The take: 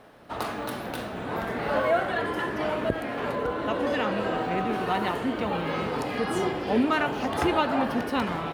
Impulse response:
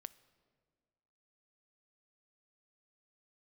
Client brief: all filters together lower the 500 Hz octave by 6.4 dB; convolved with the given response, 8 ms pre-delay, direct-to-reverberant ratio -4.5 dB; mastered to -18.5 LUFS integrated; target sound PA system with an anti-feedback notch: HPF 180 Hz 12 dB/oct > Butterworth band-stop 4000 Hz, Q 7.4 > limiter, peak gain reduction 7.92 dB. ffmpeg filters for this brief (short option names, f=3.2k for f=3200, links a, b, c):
-filter_complex "[0:a]equalizer=f=500:t=o:g=-8.5,asplit=2[a][b];[1:a]atrim=start_sample=2205,adelay=8[c];[b][c]afir=irnorm=-1:irlink=0,volume=10dB[d];[a][d]amix=inputs=2:normalize=0,highpass=180,asuperstop=centerf=4000:order=8:qfactor=7.4,volume=7.5dB,alimiter=limit=-8dB:level=0:latency=1"